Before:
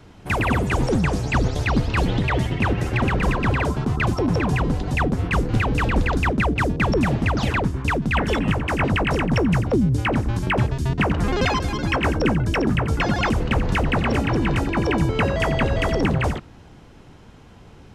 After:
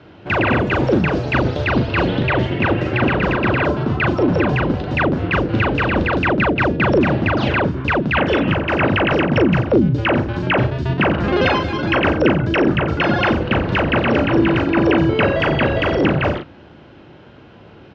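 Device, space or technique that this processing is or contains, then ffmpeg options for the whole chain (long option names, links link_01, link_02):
guitar cabinet: -filter_complex "[0:a]highpass=83,equalizer=frequency=340:width_type=q:width=4:gain=7,equalizer=frequency=580:width_type=q:width=4:gain=7,equalizer=frequency=1500:width_type=q:width=4:gain=5,equalizer=frequency=2800:width_type=q:width=4:gain=4,lowpass=frequency=4400:width=0.5412,lowpass=frequency=4400:width=1.3066,asplit=2[link_01][link_02];[link_02]adelay=39,volume=-5dB[link_03];[link_01][link_03]amix=inputs=2:normalize=0,volume=1.5dB"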